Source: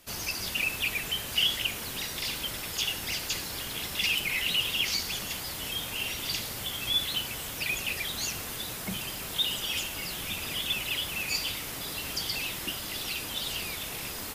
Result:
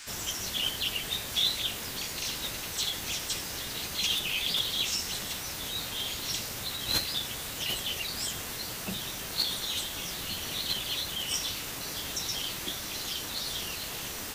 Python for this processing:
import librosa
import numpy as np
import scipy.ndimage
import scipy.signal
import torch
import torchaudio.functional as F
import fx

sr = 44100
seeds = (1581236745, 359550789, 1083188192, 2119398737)

y = fx.dmg_noise_band(x, sr, seeds[0], low_hz=970.0, high_hz=6900.0, level_db=-45.0)
y = fx.formant_shift(y, sr, semitones=3)
y = y * librosa.db_to_amplitude(-1.0)